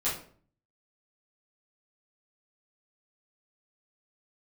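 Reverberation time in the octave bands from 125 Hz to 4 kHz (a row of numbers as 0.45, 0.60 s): 0.75, 0.65, 0.55, 0.45, 0.40, 0.35 s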